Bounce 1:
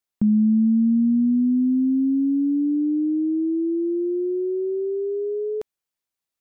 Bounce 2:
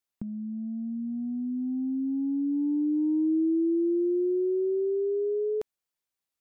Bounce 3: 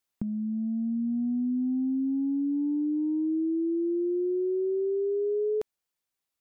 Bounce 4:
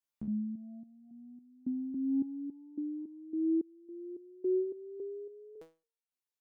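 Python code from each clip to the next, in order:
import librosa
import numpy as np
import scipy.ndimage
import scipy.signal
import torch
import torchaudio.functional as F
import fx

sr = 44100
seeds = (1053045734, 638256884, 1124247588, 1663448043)

y1 = fx.over_compress(x, sr, threshold_db=-22.0, ratio=-0.5)
y1 = y1 * librosa.db_to_amplitude(-4.5)
y2 = fx.rider(y1, sr, range_db=4, speed_s=0.5)
y3 = fx.resonator_held(y2, sr, hz=3.6, low_hz=74.0, high_hz=460.0)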